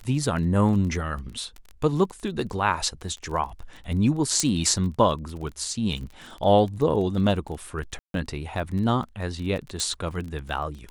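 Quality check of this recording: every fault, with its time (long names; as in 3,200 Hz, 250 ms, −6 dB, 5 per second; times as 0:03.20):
surface crackle 23 per second −32 dBFS
0:04.40: click −8 dBFS
0:07.99–0:08.14: drop-out 152 ms
0:09.80: click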